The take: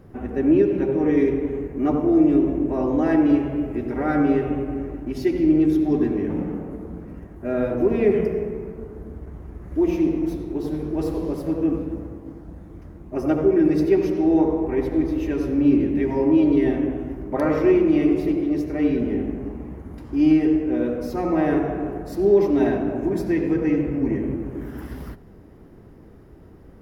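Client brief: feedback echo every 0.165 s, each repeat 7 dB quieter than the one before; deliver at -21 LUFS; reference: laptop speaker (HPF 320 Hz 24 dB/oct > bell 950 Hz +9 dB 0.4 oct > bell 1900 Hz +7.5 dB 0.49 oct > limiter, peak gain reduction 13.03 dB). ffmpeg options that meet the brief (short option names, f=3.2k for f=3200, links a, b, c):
-af "highpass=f=320:w=0.5412,highpass=f=320:w=1.3066,equalizer=f=950:t=o:w=0.4:g=9,equalizer=f=1.9k:t=o:w=0.49:g=7.5,aecho=1:1:165|330|495|660|825:0.447|0.201|0.0905|0.0407|0.0183,volume=7.5dB,alimiter=limit=-13dB:level=0:latency=1"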